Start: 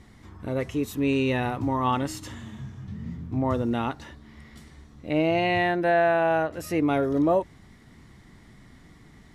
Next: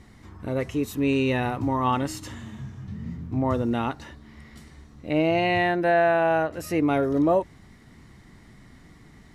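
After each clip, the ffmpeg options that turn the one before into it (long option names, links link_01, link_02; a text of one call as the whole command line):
ffmpeg -i in.wav -af "bandreject=frequency=3400:width=21,volume=1dB" out.wav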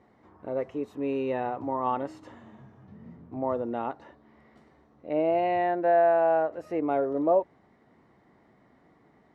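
ffmpeg -i in.wav -af "bandpass=frequency=620:width_type=q:width=1.3:csg=0" out.wav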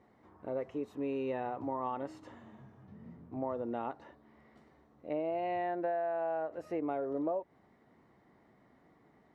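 ffmpeg -i in.wav -af "acompressor=threshold=-27dB:ratio=10,volume=-4dB" out.wav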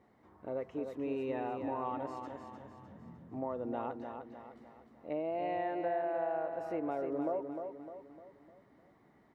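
ffmpeg -i in.wav -af "aecho=1:1:303|606|909|1212|1515:0.473|0.213|0.0958|0.0431|0.0194,volume=-1.5dB" out.wav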